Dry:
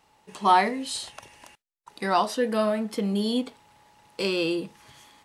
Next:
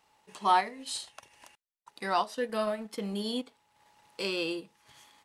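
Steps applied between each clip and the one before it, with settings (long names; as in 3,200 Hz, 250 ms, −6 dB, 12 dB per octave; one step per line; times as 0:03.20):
low-shelf EQ 430 Hz −6.5 dB
transient designer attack −1 dB, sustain −8 dB
level −3.5 dB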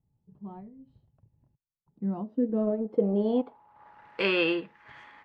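dynamic equaliser 3,100 Hz, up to +6 dB, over −50 dBFS, Q 1.6
low-pass filter sweep 130 Hz → 1,800 Hz, 0:01.69–0:04.17
level +6.5 dB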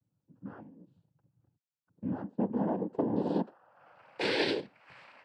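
cochlear-implant simulation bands 8
level −4 dB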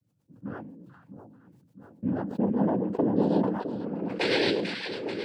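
echo with a time of its own for lows and highs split 940 Hz, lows 660 ms, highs 438 ms, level −8.5 dB
rotating-speaker cabinet horn 8 Hz
level that may fall only so fast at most 46 dB per second
level +6.5 dB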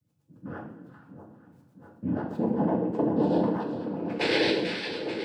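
coupled-rooms reverb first 0.55 s, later 3 s, from −16 dB, DRR 1 dB
level −1.5 dB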